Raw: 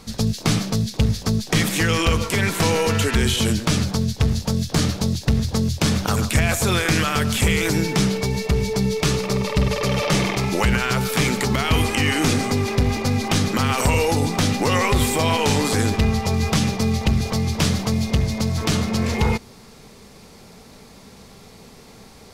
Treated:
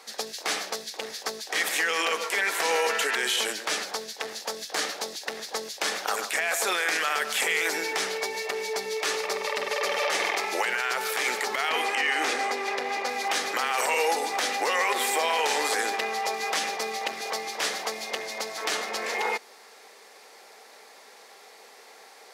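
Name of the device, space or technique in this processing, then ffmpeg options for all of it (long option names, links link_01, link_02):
laptop speaker: -filter_complex "[0:a]asettb=1/sr,asplit=3[link_01][link_02][link_03];[link_01]atrim=end=11.694[link_04];[link_02]atrim=start=11.69:end=13.09,asetpts=PTS-STARTPTS,afade=type=in:duration=0.004:curve=qsin,afade=type=out:start_time=1.396:duration=0.004:curve=qsin,highshelf=frequency=7700:gain=-10[link_05];[link_03]atrim=start=13.086[link_06];[link_04][link_05]acrossfade=duration=0.004:curve1=hsin:curve2=qsin[link_07];[link_07][link_06]acrossfade=duration=0.004:curve1=qsin:curve2=hsin,highpass=frequency=430:width=0.5412,highpass=frequency=430:width=1.3066,equalizer=frequency=790:width_type=o:width=0.23:gain=5,equalizer=frequency=1800:width_type=o:width=0.6:gain=7,alimiter=limit=-11.5dB:level=0:latency=1:release=43,volume=-3.5dB"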